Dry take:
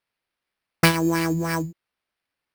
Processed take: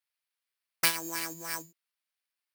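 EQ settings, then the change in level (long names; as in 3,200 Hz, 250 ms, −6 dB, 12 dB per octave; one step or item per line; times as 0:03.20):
high-pass filter 1,400 Hz 6 dB per octave
high-shelf EQ 5,200 Hz +10 dB
−8.0 dB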